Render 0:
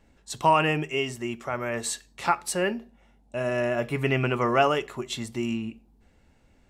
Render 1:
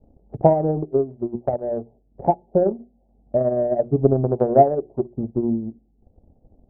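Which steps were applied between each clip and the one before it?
steep low-pass 780 Hz 72 dB/oct; notches 60/120/180/240/300/360 Hz; transient shaper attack +9 dB, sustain -8 dB; gain +5.5 dB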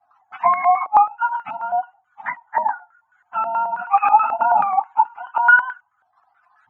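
spectrum mirrored in octaves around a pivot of 580 Hz; Chebyshev band-stop 280–710 Hz, order 5; stepped low-pass 9.3 Hz 690–1600 Hz; gain +3 dB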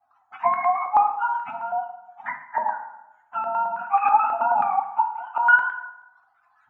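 plate-style reverb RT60 0.9 s, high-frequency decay 0.65×, DRR 4.5 dB; gain -5 dB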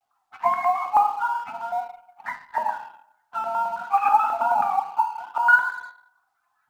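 G.711 law mismatch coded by A

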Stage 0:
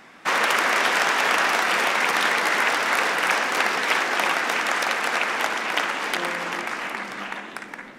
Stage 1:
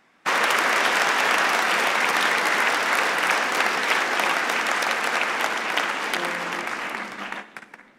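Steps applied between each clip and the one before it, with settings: gate -33 dBFS, range -12 dB; on a send at -16 dB: reverb RT60 0.65 s, pre-delay 48 ms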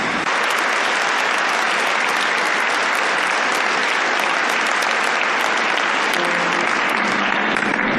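spectral gate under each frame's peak -30 dB strong; fast leveller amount 100%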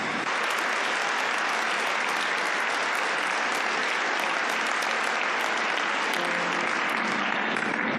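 HPF 72 Hz; on a send: early reflections 27 ms -10.5 dB, 75 ms -16.5 dB; on the sum: gain -8.5 dB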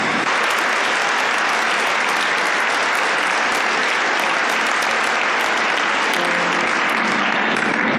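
vocal rider; sine folder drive 5 dB, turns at -9 dBFS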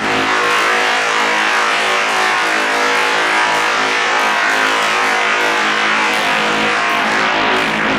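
on a send: flutter echo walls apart 3.2 m, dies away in 0.83 s; on the sum: Doppler distortion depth 0.7 ms; gain -1.5 dB

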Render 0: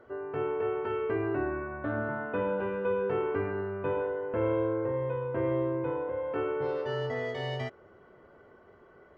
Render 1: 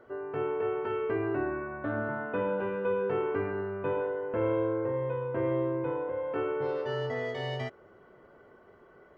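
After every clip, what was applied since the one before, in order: bell 78 Hz -8 dB 0.39 oct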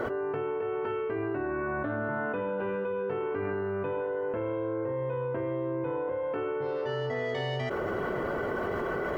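fast leveller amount 100%; gain -5 dB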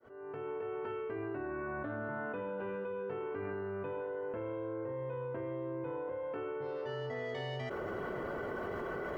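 opening faded in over 0.51 s; gain -7.5 dB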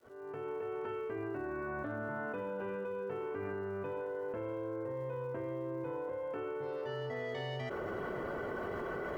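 crackle 350/s -62 dBFS

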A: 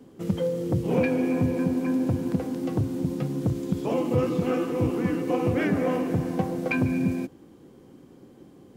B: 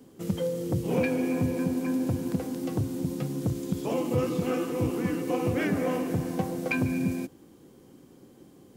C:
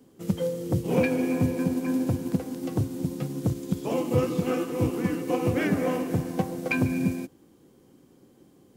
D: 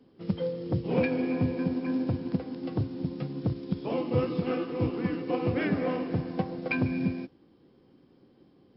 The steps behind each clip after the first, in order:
high shelf 4700 Hz +10 dB; gain -3 dB
upward expander 1.5:1, over -37 dBFS; gain +4 dB
gain -2.5 dB; MP3 40 kbps 12000 Hz

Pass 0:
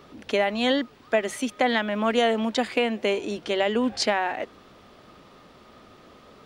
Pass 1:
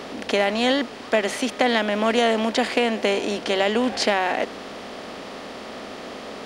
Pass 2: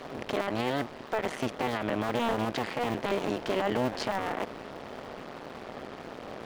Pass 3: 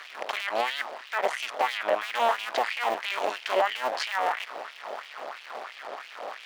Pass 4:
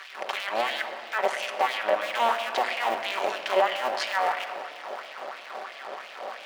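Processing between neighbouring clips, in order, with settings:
per-bin compression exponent 0.6
cycle switcher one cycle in 2, muted; high shelf 2900 Hz -11.5 dB; limiter -16.5 dBFS, peak gain reduction 8 dB; gain -2 dB
LFO high-pass sine 3 Hz 600–2700 Hz; gain +3 dB
shoebox room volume 3700 m³, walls mixed, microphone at 1.1 m

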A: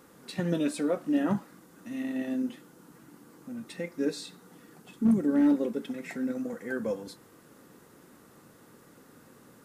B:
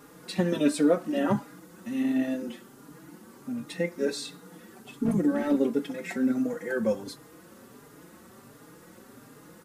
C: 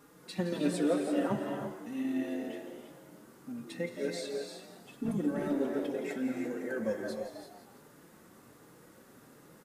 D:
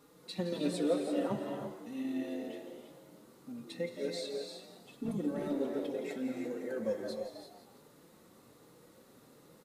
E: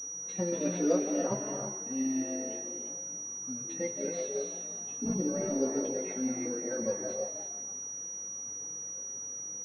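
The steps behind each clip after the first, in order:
endless flanger 4.5 ms +1.4 Hz; gain +7.5 dB
on a send: frequency-shifting echo 0.169 s, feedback 43%, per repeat +92 Hz, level -11 dB; on the sum: non-linear reverb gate 0.37 s rising, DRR 4 dB; gain -7.5 dB
thirty-one-band EQ 500 Hz +4 dB, 1600 Hz -6 dB, 4000 Hz +7 dB; gain -3.5 dB
chorus voices 2, 0.52 Hz, delay 16 ms, depth 1.1 ms; pulse-width modulation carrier 5800 Hz; gain +5.5 dB

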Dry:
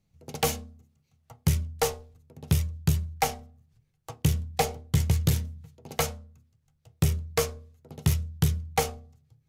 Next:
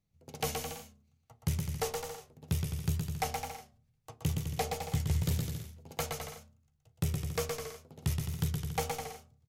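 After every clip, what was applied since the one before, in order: on a send: bouncing-ball echo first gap 0.12 s, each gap 0.75×, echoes 5; on the sum: wow and flutter 44 cents; gain -8.5 dB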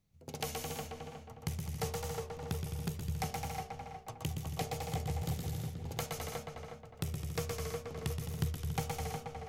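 compressor 3:1, threshold -42 dBFS, peak gain reduction 12 dB; on a send: darkening echo 0.362 s, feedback 41%, low-pass 1800 Hz, level -3 dB; on the sum: gain +4 dB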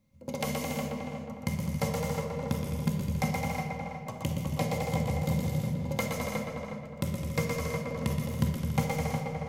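small resonant body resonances 220/550/990/2100 Hz, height 16 dB, ringing for 65 ms; on a send at -3.5 dB: HPF 130 Hz + reverb RT60 1.6 s, pre-delay 4 ms; on the sum: gain +1.5 dB

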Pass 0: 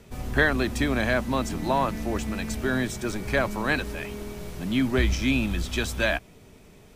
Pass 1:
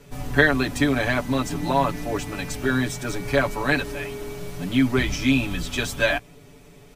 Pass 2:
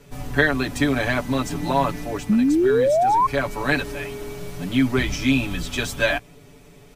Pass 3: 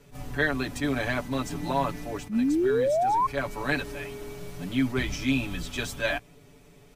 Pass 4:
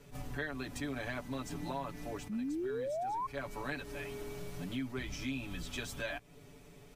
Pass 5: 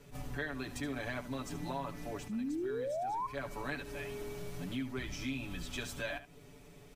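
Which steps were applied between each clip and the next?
comb 7 ms, depth 99%
painted sound rise, 2.29–3.27, 200–1100 Hz -12 dBFS; vocal rider within 3 dB 0.5 s; gain -2.5 dB
attack slew limiter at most 220 dB/s; gain -6 dB
compressor 3:1, threshold -37 dBFS, peak gain reduction 13 dB; gain -2 dB
echo 73 ms -13.5 dB

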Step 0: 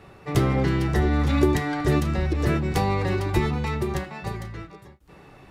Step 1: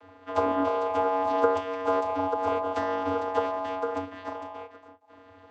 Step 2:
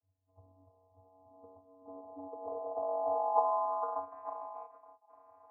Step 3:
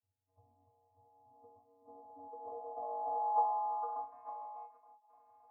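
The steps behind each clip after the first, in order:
ring modulator 810 Hz; dynamic EQ 1800 Hz, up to -4 dB, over -38 dBFS, Q 1.1; vocoder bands 16, square 93.6 Hz
vocal tract filter a; low-pass sweep 100 Hz -> 2000 Hz, 0.92–4.31; gain +3.5 dB
resonator 120 Hz, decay 0.18 s, harmonics all, mix 100%; gain +2.5 dB

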